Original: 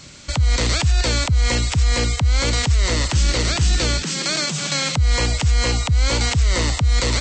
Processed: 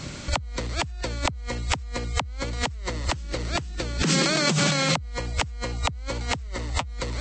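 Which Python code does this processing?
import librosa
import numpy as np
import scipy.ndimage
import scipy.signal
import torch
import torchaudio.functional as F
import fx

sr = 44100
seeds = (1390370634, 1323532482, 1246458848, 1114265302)

y = fx.high_shelf(x, sr, hz=2200.0, db=-9.5)
y = fx.over_compress(y, sr, threshold_db=-29.0, ratio=-1.0)
y = fx.notch_comb(y, sr, f0_hz=170.0, at=(6.47, 6.87))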